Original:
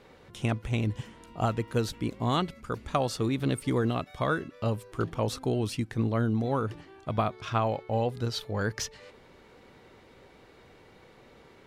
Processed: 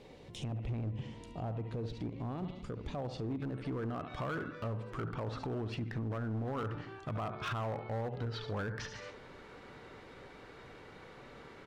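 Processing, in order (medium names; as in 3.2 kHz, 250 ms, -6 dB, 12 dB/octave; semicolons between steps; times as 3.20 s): treble shelf 11 kHz -9.5 dB; feedback delay 71 ms, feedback 40%, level -15.5 dB; compression 3:1, threshold -33 dBFS, peak gain reduction 9 dB; low-pass that closes with the level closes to 1.3 kHz, closed at -30 dBFS; reverberation RT60 0.80 s, pre-delay 7 ms, DRR 17.5 dB; peak limiter -29.5 dBFS, peak gain reduction 9 dB; peaking EQ 1.4 kHz -12.5 dB 0.81 oct, from 3.42 s +4.5 dB; overload inside the chain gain 34 dB; trim +1.5 dB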